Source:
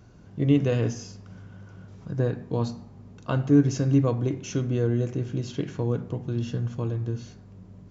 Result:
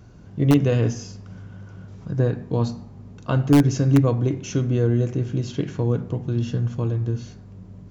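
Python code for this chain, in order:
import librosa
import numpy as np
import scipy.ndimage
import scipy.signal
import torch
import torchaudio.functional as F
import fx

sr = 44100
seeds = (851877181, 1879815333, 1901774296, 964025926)

p1 = fx.low_shelf(x, sr, hz=170.0, db=3.5)
p2 = (np.mod(10.0 ** (9.5 / 20.0) * p1 + 1.0, 2.0) - 1.0) / 10.0 ** (9.5 / 20.0)
y = p1 + (p2 * 10.0 ** (-8.0 / 20.0))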